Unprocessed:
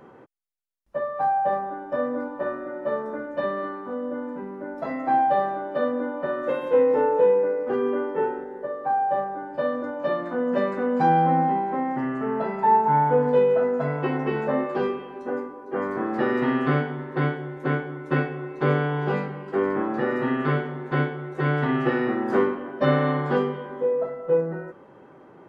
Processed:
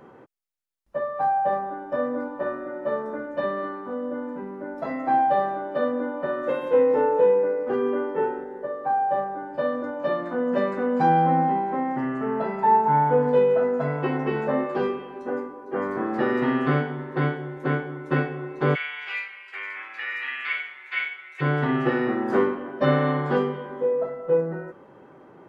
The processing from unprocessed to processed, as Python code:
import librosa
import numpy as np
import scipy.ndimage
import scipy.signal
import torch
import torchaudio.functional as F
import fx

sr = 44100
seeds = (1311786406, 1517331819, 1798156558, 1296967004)

y = fx.highpass_res(x, sr, hz=2300.0, q=6.2, at=(18.74, 21.4), fade=0.02)